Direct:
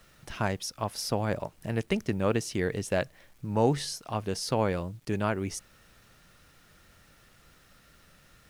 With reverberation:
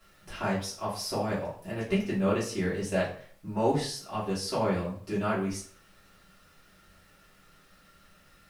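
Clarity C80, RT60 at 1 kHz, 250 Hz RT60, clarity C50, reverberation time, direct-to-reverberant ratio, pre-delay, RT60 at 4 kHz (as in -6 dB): 11.0 dB, 0.50 s, 0.45 s, 6.5 dB, 0.50 s, -9.5 dB, 3 ms, 0.40 s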